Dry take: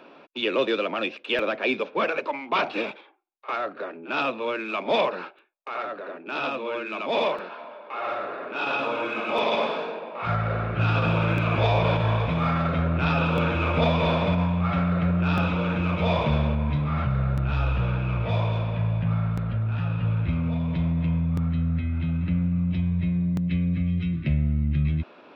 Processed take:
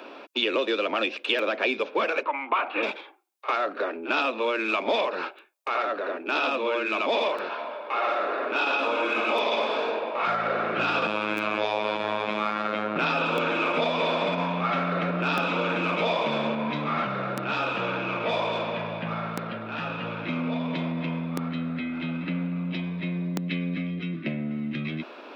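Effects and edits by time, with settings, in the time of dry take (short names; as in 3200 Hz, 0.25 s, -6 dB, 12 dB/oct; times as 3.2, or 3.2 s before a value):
2.23–2.83 speaker cabinet 360–2600 Hz, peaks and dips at 400 Hz -7 dB, 630 Hz -5 dB, 1200 Hz +4 dB, 1900 Hz -3 dB
11.07–12.96 robotiser 106 Hz
23.87–24.51 high shelf 2400 Hz -8.5 dB
whole clip: HPF 240 Hz 24 dB/oct; high shelf 4400 Hz +6.5 dB; compressor, threshold -28 dBFS; gain +6 dB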